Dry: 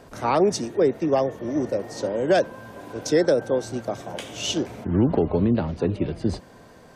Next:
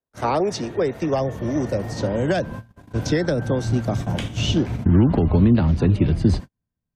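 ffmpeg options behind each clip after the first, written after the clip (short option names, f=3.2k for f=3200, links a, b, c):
-filter_complex "[0:a]agate=range=-50dB:threshold=-36dB:ratio=16:detection=peak,acrossover=split=290|670|4700[a][b][c][d];[a]acompressor=threshold=-38dB:ratio=4[e];[b]acompressor=threshold=-27dB:ratio=4[f];[c]acompressor=threshold=-31dB:ratio=4[g];[d]acompressor=threshold=-51dB:ratio=4[h];[e][f][g][h]amix=inputs=4:normalize=0,asubboost=boost=11.5:cutoff=150,volume=6dB"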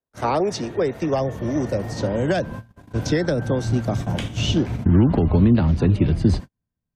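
-af anull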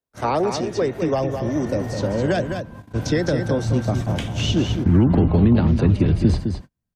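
-af "aecho=1:1:209:0.447"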